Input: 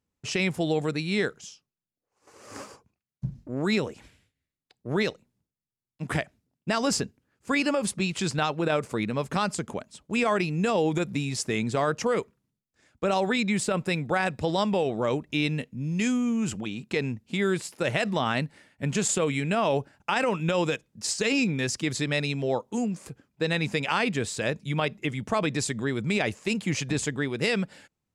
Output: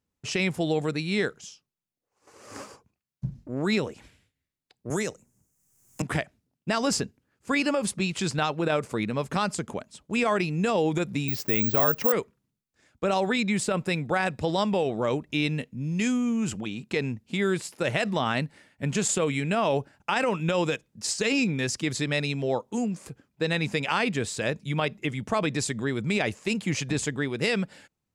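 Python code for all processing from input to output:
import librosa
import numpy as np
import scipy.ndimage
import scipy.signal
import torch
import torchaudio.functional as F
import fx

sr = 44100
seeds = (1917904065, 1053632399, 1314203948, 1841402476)

y = fx.chain(x, sr, fx.high_shelf_res(hz=5200.0, db=10.0, q=3.0),
    fx.band_squash(depth_pct=100), at=(4.9, 6.02))
y = fx.chain(y, sr, fx.lowpass(hz=4100.0, slope=12),
    fx.quant_companded(bits=6),
    fx.resample_bad(factor=2, down='filtered', up='zero_stuff'), at=(11.28, 12.12))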